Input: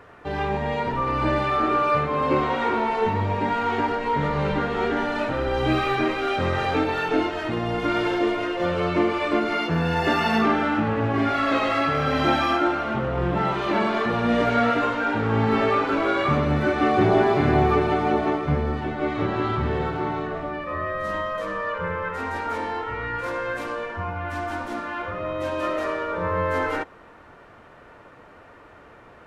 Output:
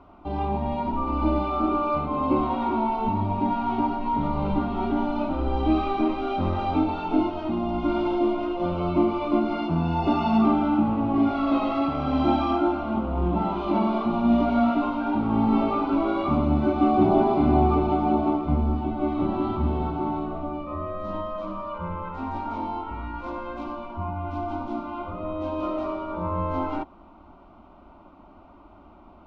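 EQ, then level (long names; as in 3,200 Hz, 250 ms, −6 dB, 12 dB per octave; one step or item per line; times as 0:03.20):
high-frequency loss of the air 250 metres
low-shelf EQ 260 Hz +8.5 dB
phaser with its sweep stopped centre 470 Hz, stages 6
0.0 dB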